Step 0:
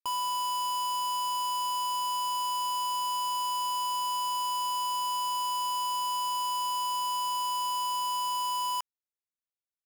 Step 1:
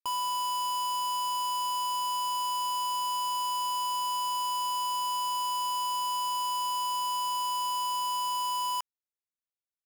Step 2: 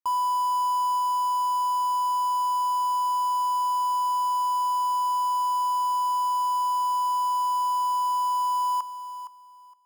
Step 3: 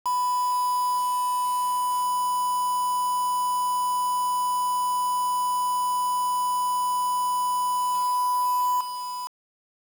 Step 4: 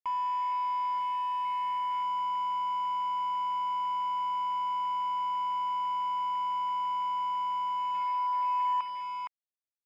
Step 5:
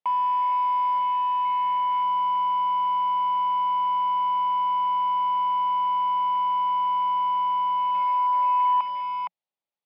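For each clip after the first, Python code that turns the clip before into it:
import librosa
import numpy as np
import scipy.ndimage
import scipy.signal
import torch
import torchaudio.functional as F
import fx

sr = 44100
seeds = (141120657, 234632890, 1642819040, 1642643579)

y1 = x
y2 = fx.graphic_eq_15(y1, sr, hz=(100, 1000, 2500), db=(-3, 11, -9))
y2 = fx.echo_feedback(y2, sr, ms=464, feedback_pct=20, wet_db=-12.0)
y2 = F.gain(torch.from_numpy(y2), -3.5).numpy()
y3 = fx.rider(y2, sr, range_db=3, speed_s=2.0)
y3 = fx.quant_dither(y3, sr, seeds[0], bits=6, dither='none')
y4 = fx.rider(y3, sr, range_db=5, speed_s=2.0)
y4 = fx.lowpass_res(y4, sr, hz=2200.0, q=9.1)
y4 = F.gain(torch.from_numpy(y4), -8.0).numpy()
y5 = fx.cabinet(y4, sr, low_hz=150.0, low_slope=24, high_hz=4100.0, hz=(180.0, 270.0, 580.0, 830.0, 1600.0), db=(5, -5, 6, 8, -7))
y5 = F.gain(torch.from_numpy(y5), 5.0).numpy()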